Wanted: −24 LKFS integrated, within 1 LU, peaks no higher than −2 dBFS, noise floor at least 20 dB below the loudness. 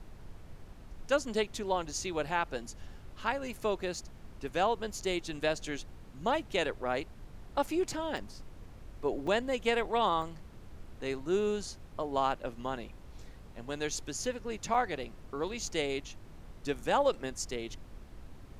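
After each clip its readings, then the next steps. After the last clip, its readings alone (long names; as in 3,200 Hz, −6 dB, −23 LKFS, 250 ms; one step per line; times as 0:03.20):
number of dropouts 4; longest dropout 4.4 ms; background noise floor −51 dBFS; target noise floor −54 dBFS; integrated loudness −34.0 LKFS; sample peak −15.5 dBFS; target loudness −24.0 LKFS
→ repair the gap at 0:08.17/0:09.27/0:10.22/0:14.74, 4.4 ms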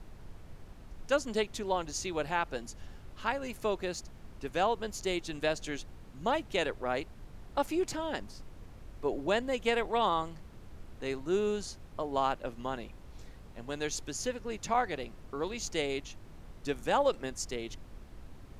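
number of dropouts 0; background noise floor −51 dBFS; target noise floor −54 dBFS
→ noise reduction from a noise print 6 dB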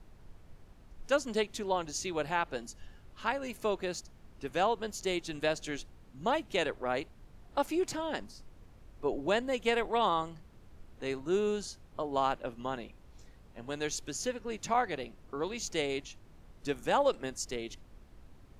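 background noise floor −57 dBFS; integrated loudness −34.0 LKFS; sample peak −16.0 dBFS; target loudness −24.0 LKFS
→ level +10 dB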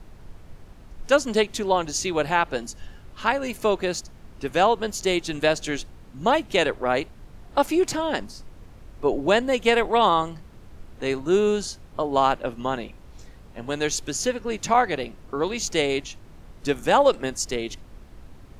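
integrated loudness −24.0 LKFS; sample peak −6.0 dBFS; background noise floor −47 dBFS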